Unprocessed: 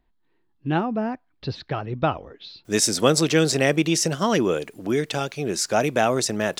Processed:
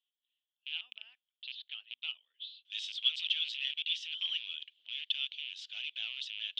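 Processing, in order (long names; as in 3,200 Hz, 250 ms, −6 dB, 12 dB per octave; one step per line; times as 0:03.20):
loose part that buzzes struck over −28 dBFS, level −21 dBFS
in parallel at −5.5 dB: wave folding −16 dBFS
on the sum: flat-topped band-pass 3,200 Hz, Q 4.9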